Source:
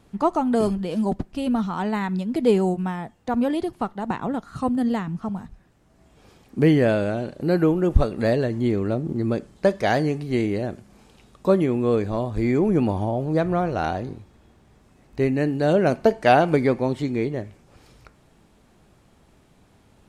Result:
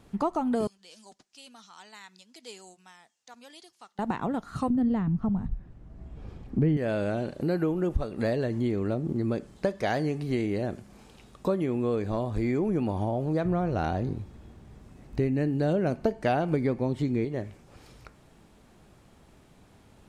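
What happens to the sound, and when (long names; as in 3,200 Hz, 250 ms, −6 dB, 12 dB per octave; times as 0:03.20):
0:00.67–0:03.99: resonant band-pass 6,100 Hz, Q 1.9
0:04.70–0:06.77: RIAA equalisation playback
0:13.45–0:17.25: low-shelf EQ 320 Hz +8 dB
whole clip: downward compressor 3 to 1, threshold −26 dBFS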